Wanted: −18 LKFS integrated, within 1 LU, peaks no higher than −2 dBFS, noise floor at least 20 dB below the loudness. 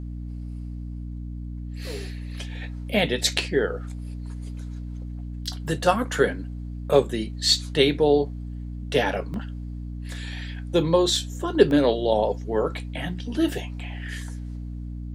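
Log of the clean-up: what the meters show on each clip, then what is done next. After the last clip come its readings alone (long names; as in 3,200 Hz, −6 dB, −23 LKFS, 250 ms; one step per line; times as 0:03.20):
number of dropouts 3; longest dropout 1.2 ms; mains hum 60 Hz; hum harmonics up to 300 Hz; level of the hum −31 dBFS; integrated loudness −24.5 LKFS; sample peak −2.5 dBFS; target loudness −18.0 LKFS
→ repair the gap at 0:09.34/0:11.16/0:11.71, 1.2 ms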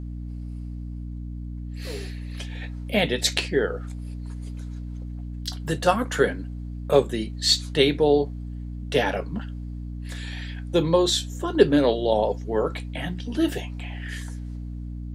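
number of dropouts 0; mains hum 60 Hz; hum harmonics up to 300 Hz; level of the hum −31 dBFS
→ mains-hum notches 60/120/180/240/300 Hz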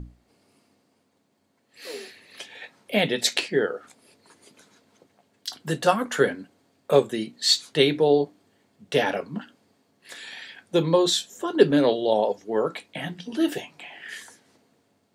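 mains hum none found; integrated loudness −23.5 LKFS; sample peak −3.0 dBFS; target loudness −18.0 LKFS
→ level +5.5 dB
brickwall limiter −2 dBFS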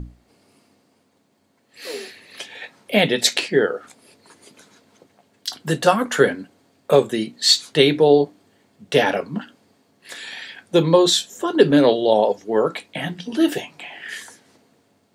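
integrated loudness −18.5 LKFS; sample peak −2.0 dBFS; background noise floor −63 dBFS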